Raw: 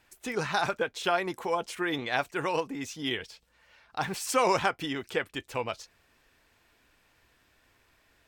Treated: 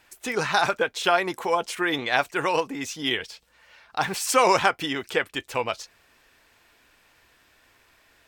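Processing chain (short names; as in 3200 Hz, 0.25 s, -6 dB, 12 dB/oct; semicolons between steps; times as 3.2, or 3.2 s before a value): low shelf 320 Hz -6.5 dB; gain +7 dB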